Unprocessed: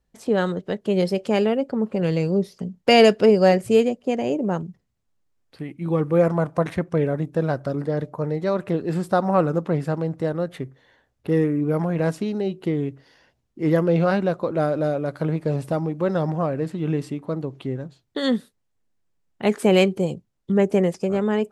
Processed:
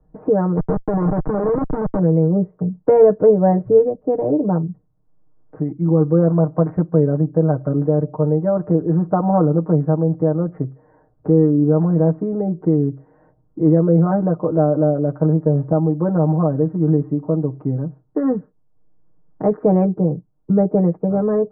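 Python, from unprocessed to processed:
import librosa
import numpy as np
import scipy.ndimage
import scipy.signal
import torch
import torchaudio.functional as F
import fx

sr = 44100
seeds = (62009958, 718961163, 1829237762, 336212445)

y = fx.schmitt(x, sr, flips_db=-29.5, at=(0.57, 1.99))
y = scipy.signal.sosfilt(scipy.signal.bessel(8, 760.0, 'lowpass', norm='mag', fs=sr, output='sos'), y)
y = y + 0.95 * np.pad(y, (int(6.5 * sr / 1000.0), 0))[:len(y)]
y = fx.band_squash(y, sr, depth_pct=40)
y = y * librosa.db_to_amplitude(2.5)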